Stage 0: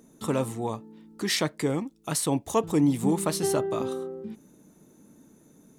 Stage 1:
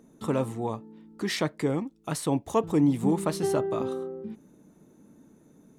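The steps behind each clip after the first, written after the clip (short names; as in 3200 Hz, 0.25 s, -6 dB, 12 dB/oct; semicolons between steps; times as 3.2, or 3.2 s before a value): high shelf 3500 Hz -9 dB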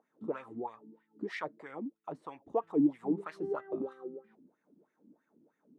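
wah 3.1 Hz 240–2000 Hz, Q 4.3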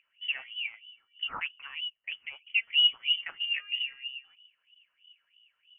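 inverted band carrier 3200 Hz; gain +3.5 dB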